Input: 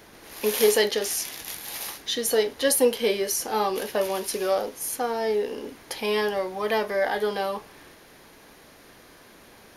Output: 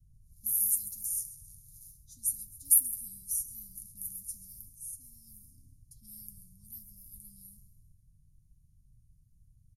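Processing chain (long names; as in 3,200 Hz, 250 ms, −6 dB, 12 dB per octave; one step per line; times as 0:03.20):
comb filter 6.7 ms, depth 38%
low-pass that shuts in the quiet parts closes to 2,600 Hz, open at −19.5 dBFS
repeating echo 134 ms, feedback 43%, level −15.5 dB
pitch vibrato 1.2 Hz 25 cents
inverse Chebyshev band-stop filter 410–2,900 Hz, stop band 70 dB
level +4 dB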